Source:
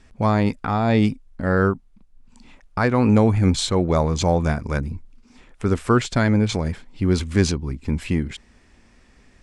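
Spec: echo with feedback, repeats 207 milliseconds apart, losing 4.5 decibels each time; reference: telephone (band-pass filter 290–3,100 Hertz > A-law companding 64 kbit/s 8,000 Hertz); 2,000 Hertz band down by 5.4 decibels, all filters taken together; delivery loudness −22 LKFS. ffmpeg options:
ffmpeg -i in.wav -af "highpass=290,lowpass=3100,equalizer=frequency=2000:width_type=o:gain=-7,aecho=1:1:207|414|621|828|1035|1242|1449|1656|1863:0.596|0.357|0.214|0.129|0.0772|0.0463|0.0278|0.0167|0.01,volume=2.5dB" -ar 8000 -c:a pcm_alaw out.wav

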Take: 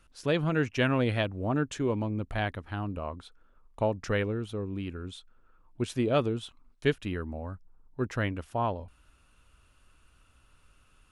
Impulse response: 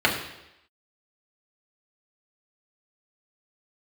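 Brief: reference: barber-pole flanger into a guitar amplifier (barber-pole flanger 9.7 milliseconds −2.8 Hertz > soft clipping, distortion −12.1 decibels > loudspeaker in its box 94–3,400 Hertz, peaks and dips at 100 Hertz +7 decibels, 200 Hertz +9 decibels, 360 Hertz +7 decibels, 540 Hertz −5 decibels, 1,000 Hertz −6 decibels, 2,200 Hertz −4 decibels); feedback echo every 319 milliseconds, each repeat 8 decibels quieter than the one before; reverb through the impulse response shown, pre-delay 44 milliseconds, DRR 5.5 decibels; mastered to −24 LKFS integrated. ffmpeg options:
-filter_complex "[0:a]aecho=1:1:319|638|957|1276|1595:0.398|0.159|0.0637|0.0255|0.0102,asplit=2[link_01][link_02];[1:a]atrim=start_sample=2205,adelay=44[link_03];[link_02][link_03]afir=irnorm=-1:irlink=0,volume=-23.5dB[link_04];[link_01][link_04]amix=inputs=2:normalize=0,asplit=2[link_05][link_06];[link_06]adelay=9.7,afreqshift=-2.8[link_07];[link_05][link_07]amix=inputs=2:normalize=1,asoftclip=threshold=-27dB,highpass=94,equalizer=frequency=100:width_type=q:width=4:gain=7,equalizer=frequency=200:width_type=q:width=4:gain=9,equalizer=frequency=360:width_type=q:width=4:gain=7,equalizer=frequency=540:width_type=q:width=4:gain=-5,equalizer=frequency=1000:width_type=q:width=4:gain=-6,equalizer=frequency=2200:width_type=q:width=4:gain=-4,lowpass=frequency=3400:width=0.5412,lowpass=frequency=3400:width=1.3066,volume=9dB"

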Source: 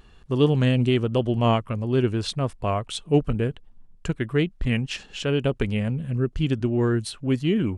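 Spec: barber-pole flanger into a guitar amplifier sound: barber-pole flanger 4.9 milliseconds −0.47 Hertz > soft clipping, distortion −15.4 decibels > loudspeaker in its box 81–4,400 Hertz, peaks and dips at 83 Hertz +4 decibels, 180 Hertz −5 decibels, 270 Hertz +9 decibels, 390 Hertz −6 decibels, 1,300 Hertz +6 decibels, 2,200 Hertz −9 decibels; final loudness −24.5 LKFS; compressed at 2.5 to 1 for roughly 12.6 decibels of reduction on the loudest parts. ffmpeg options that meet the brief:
ffmpeg -i in.wav -filter_complex "[0:a]acompressor=threshold=-33dB:ratio=2.5,asplit=2[link_01][link_02];[link_02]adelay=4.9,afreqshift=-0.47[link_03];[link_01][link_03]amix=inputs=2:normalize=1,asoftclip=threshold=-28.5dB,highpass=81,equalizer=frequency=83:width_type=q:width=4:gain=4,equalizer=frequency=180:width_type=q:width=4:gain=-5,equalizer=frequency=270:width_type=q:width=4:gain=9,equalizer=frequency=390:width_type=q:width=4:gain=-6,equalizer=frequency=1300:width_type=q:width=4:gain=6,equalizer=frequency=2200:width_type=q:width=4:gain=-9,lowpass=frequency=4400:width=0.5412,lowpass=frequency=4400:width=1.3066,volume=13.5dB" out.wav

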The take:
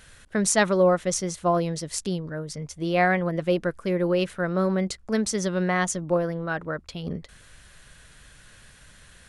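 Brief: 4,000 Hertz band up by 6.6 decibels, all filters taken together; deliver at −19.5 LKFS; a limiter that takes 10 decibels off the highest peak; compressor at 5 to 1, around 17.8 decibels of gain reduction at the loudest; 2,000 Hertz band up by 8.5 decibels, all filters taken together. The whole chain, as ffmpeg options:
ffmpeg -i in.wav -af "equalizer=frequency=2000:width_type=o:gain=9,equalizer=frequency=4000:width_type=o:gain=6,acompressor=threshold=-32dB:ratio=5,volume=17.5dB,alimiter=limit=-9dB:level=0:latency=1" out.wav

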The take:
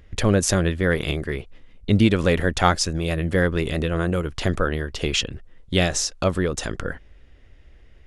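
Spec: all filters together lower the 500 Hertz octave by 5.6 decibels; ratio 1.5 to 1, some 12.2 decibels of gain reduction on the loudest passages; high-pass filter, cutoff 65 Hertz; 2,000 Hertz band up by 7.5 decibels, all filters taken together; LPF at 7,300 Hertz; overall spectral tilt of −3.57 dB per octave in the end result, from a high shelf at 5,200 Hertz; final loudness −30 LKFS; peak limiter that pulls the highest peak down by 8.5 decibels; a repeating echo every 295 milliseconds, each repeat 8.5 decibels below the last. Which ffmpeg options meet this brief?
ffmpeg -i in.wav -af "highpass=65,lowpass=7300,equalizer=frequency=500:width_type=o:gain=-7.5,equalizer=frequency=2000:width_type=o:gain=9,highshelf=frequency=5200:gain=7,acompressor=threshold=-47dB:ratio=1.5,alimiter=limit=-20dB:level=0:latency=1,aecho=1:1:295|590|885|1180:0.376|0.143|0.0543|0.0206,volume=3dB" out.wav

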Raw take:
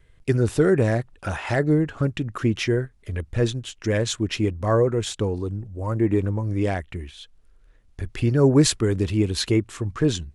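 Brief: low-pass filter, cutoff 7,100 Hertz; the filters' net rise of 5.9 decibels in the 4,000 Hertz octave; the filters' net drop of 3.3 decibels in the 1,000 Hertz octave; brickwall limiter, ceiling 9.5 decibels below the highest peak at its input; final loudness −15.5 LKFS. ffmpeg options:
ffmpeg -i in.wav -af "lowpass=7100,equalizer=frequency=1000:width_type=o:gain=-5,equalizer=frequency=4000:width_type=o:gain=7.5,volume=10.5dB,alimiter=limit=-5dB:level=0:latency=1" out.wav

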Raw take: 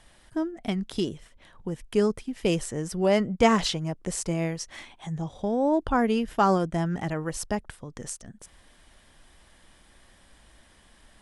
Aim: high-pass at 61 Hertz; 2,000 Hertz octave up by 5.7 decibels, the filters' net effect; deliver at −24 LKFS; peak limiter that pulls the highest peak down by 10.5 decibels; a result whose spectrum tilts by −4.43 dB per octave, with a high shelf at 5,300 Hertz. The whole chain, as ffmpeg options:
ffmpeg -i in.wav -af "highpass=61,equalizer=frequency=2000:width_type=o:gain=6,highshelf=frequency=5300:gain=6.5,volume=4.5dB,alimiter=limit=-11.5dB:level=0:latency=1" out.wav

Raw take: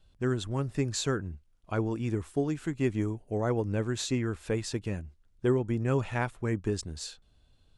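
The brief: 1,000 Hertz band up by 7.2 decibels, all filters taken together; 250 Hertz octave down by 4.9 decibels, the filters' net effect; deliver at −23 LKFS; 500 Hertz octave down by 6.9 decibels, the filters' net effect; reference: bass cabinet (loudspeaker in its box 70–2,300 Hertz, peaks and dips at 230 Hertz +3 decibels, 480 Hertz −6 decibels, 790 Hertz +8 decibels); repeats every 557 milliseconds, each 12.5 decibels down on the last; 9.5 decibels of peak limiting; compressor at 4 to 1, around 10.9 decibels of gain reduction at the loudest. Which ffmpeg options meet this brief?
ffmpeg -i in.wav -af "equalizer=frequency=250:width_type=o:gain=-6,equalizer=frequency=500:width_type=o:gain=-6.5,equalizer=frequency=1000:width_type=o:gain=7.5,acompressor=threshold=-38dB:ratio=4,alimiter=level_in=10dB:limit=-24dB:level=0:latency=1,volume=-10dB,highpass=frequency=70:width=0.5412,highpass=frequency=70:width=1.3066,equalizer=frequency=230:width_type=q:width=4:gain=3,equalizer=frequency=480:width_type=q:width=4:gain=-6,equalizer=frequency=790:width_type=q:width=4:gain=8,lowpass=frequency=2300:width=0.5412,lowpass=frequency=2300:width=1.3066,aecho=1:1:557|1114|1671:0.237|0.0569|0.0137,volume=22dB" out.wav

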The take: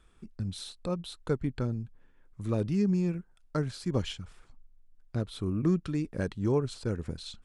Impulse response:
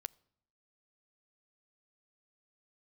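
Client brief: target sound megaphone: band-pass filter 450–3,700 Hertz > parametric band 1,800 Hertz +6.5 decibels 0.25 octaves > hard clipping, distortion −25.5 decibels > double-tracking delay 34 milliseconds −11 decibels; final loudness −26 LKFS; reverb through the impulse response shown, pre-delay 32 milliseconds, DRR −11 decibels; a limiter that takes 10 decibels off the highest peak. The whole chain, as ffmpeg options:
-filter_complex "[0:a]alimiter=level_in=1dB:limit=-24dB:level=0:latency=1,volume=-1dB,asplit=2[link_01][link_02];[1:a]atrim=start_sample=2205,adelay=32[link_03];[link_02][link_03]afir=irnorm=-1:irlink=0,volume=14.5dB[link_04];[link_01][link_04]amix=inputs=2:normalize=0,highpass=450,lowpass=3700,equalizer=frequency=1800:width_type=o:width=0.25:gain=6.5,asoftclip=type=hard:threshold=-19.5dB,asplit=2[link_05][link_06];[link_06]adelay=34,volume=-11dB[link_07];[link_05][link_07]amix=inputs=2:normalize=0,volume=7dB"

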